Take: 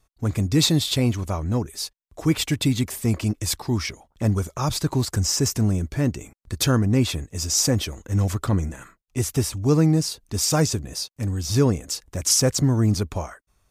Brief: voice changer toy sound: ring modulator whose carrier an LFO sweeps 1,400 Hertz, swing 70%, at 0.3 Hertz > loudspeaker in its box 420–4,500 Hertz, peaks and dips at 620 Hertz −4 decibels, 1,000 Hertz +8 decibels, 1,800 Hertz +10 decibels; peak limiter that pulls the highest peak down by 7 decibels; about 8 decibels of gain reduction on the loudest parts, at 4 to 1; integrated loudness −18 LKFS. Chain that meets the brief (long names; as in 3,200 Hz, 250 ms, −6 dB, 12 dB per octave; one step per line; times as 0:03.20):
downward compressor 4 to 1, threshold −24 dBFS
brickwall limiter −20 dBFS
ring modulator whose carrier an LFO sweeps 1,400 Hz, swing 70%, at 0.3 Hz
loudspeaker in its box 420–4,500 Hz, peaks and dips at 620 Hz −4 dB, 1,000 Hz +8 dB, 1,800 Hz +10 dB
level +9.5 dB